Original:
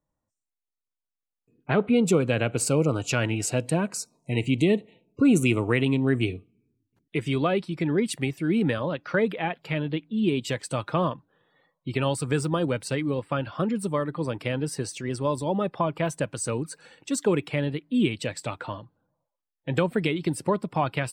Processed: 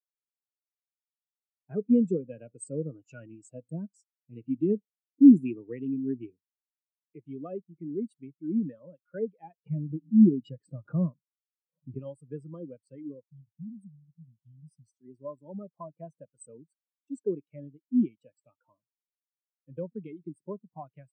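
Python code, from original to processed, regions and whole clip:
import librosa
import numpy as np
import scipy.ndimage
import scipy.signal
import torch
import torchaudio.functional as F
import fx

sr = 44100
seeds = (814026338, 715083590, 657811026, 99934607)

y = fx.chain(x, sr, fx.lowpass(hz=1800.0, slope=6),
    fx.low_shelf(hz=260.0, db=8.5),
    fx.pre_swell(db_per_s=140.0), at=(9.66, 11.99))
y = fx.chain(y, sr, fx.cheby2_bandstop(low_hz=390.0, high_hz=2000.0, order=4, stop_db=40),
    fx.low_shelf(hz=63.0, db=7.0), at=(13.24, 15.01))
y = scipy.signal.sosfilt(scipy.signal.butter(2, 160.0, 'highpass', fs=sr, output='sos'), y)
y = fx.bass_treble(y, sr, bass_db=3, treble_db=5)
y = fx.spectral_expand(y, sr, expansion=2.5)
y = y * 10.0 ** (2.5 / 20.0)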